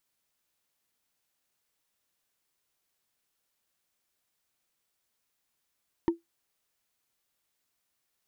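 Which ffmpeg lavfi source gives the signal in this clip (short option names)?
-f lavfi -i "aevalsrc='0.141*pow(10,-3*t/0.15)*sin(2*PI*336*t)+0.0501*pow(10,-3*t/0.044)*sin(2*PI*926.4*t)+0.0178*pow(10,-3*t/0.02)*sin(2*PI*1815.7*t)+0.00631*pow(10,-3*t/0.011)*sin(2*PI*3001.5*t)+0.00224*pow(10,-3*t/0.007)*sin(2*PI*4482.2*t)':d=0.45:s=44100"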